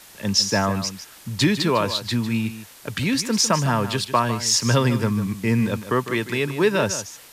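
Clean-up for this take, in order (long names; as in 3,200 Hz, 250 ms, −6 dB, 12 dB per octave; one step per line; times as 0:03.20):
broadband denoise 23 dB, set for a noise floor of −44 dBFS
echo removal 152 ms −12 dB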